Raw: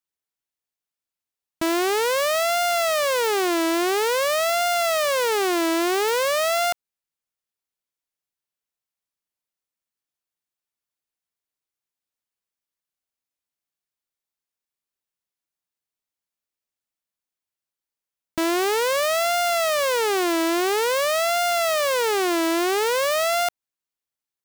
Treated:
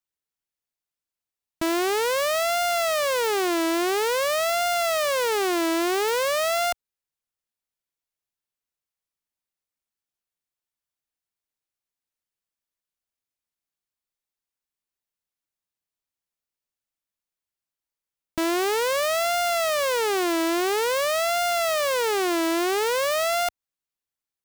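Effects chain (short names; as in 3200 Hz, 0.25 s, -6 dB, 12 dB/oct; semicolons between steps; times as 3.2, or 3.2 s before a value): low shelf 81 Hz +6.5 dB; gain -2 dB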